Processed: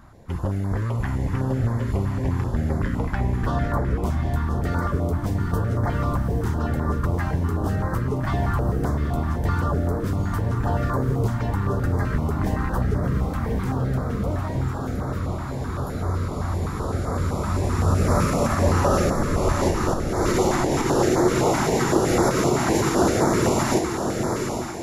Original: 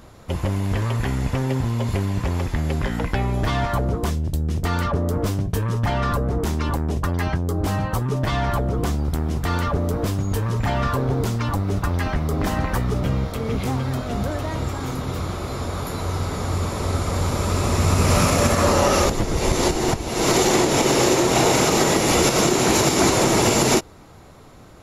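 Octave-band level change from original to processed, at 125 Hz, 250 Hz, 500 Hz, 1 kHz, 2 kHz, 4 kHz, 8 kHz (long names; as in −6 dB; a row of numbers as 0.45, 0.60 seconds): −0.5, −1.0, −2.0, −2.5, −4.5, −10.5, −8.5 decibels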